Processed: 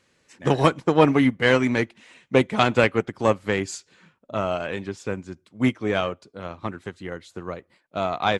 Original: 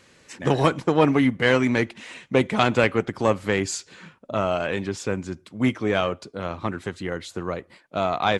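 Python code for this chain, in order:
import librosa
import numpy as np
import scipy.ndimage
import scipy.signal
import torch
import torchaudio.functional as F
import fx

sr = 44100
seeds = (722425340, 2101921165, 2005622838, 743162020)

y = fx.upward_expand(x, sr, threshold_db=-39.0, expansion=1.5)
y = F.gain(torch.from_numpy(y), 2.5).numpy()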